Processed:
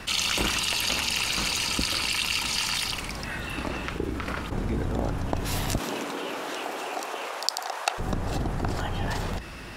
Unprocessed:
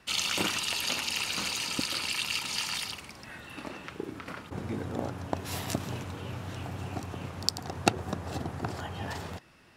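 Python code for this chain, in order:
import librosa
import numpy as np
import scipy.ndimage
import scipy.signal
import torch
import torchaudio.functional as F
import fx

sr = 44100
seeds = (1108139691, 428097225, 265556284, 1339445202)

y = fx.octave_divider(x, sr, octaves=2, level_db=1.0)
y = fx.highpass(y, sr, hz=fx.line((5.77, 230.0), (7.98, 680.0)), slope=24, at=(5.77, 7.98), fade=0.02)
y = fx.env_flatten(y, sr, amount_pct=50)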